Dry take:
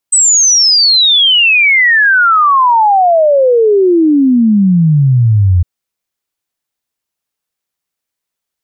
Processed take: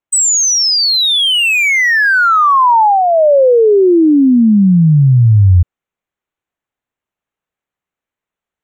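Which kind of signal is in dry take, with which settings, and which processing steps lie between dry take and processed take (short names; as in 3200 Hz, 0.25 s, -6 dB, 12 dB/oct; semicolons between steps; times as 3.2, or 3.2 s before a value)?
log sweep 8200 Hz -> 85 Hz 5.51 s -5 dBFS
Wiener smoothing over 9 samples; dynamic EQ 720 Hz, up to -7 dB, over -25 dBFS, Q 3.1; vocal rider 0.5 s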